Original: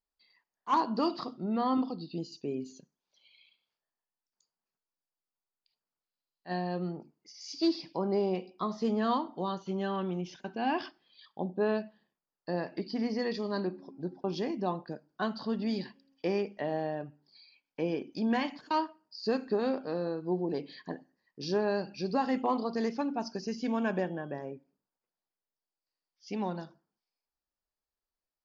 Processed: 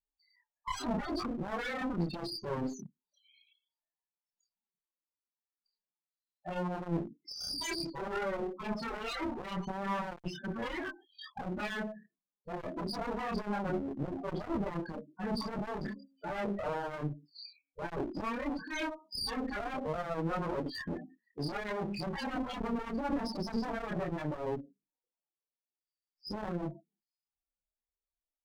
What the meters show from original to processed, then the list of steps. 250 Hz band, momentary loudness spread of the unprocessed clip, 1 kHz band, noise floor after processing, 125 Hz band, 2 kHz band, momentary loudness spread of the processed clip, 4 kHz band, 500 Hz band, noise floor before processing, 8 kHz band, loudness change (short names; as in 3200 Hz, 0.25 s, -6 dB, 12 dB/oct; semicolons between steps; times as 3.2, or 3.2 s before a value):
-4.5 dB, 13 LU, -4.0 dB, under -85 dBFS, +0.5 dB, +1.5 dB, 8 LU, +1.0 dB, -5.5 dB, under -85 dBFS, n/a, -4.0 dB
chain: gate -58 dBFS, range -15 dB; sine folder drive 17 dB, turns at -18.5 dBFS; loudest bins only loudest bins 8; chorus voices 2, 0.75 Hz, delay 27 ms, depth 2.8 ms; one-sided clip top -35.5 dBFS; gain -3.5 dB